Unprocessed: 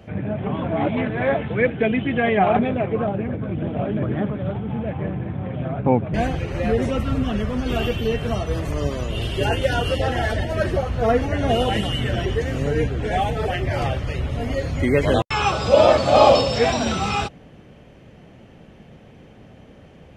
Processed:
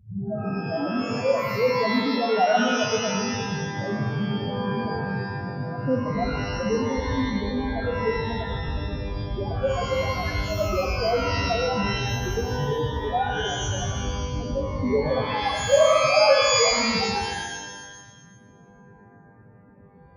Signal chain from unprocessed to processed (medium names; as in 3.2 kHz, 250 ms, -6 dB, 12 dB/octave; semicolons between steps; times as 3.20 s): loudest bins only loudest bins 2; pitch-shifted reverb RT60 1.2 s, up +12 st, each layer -2 dB, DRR 3 dB; trim -1 dB